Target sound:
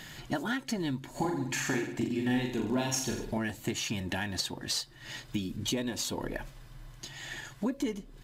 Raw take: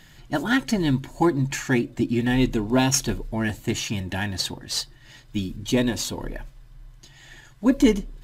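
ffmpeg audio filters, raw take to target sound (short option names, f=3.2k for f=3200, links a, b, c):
-filter_complex "[0:a]lowshelf=f=90:g=-12,acompressor=threshold=-37dB:ratio=6,asplit=3[a][b][c];[a]afade=t=out:st=1.14:d=0.02[d];[b]aecho=1:1:40|84|132.4|185.6|244.2:0.631|0.398|0.251|0.158|0.1,afade=t=in:st=1.14:d=0.02,afade=t=out:st=3.37:d=0.02[e];[c]afade=t=in:st=3.37:d=0.02[f];[d][e][f]amix=inputs=3:normalize=0,volume=6dB"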